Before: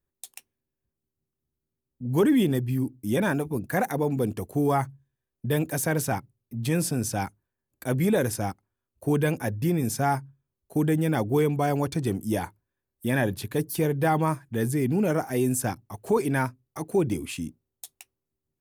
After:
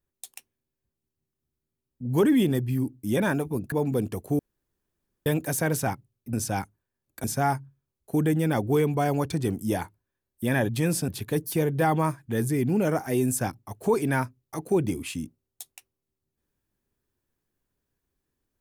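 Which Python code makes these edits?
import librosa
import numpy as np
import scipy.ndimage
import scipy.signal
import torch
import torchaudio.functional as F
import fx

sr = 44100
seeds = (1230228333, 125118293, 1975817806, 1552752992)

y = fx.edit(x, sr, fx.cut(start_s=3.72, length_s=0.25),
    fx.room_tone_fill(start_s=4.64, length_s=0.87),
    fx.move(start_s=6.58, length_s=0.39, to_s=13.31),
    fx.cut(start_s=7.88, length_s=1.98), tone=tone)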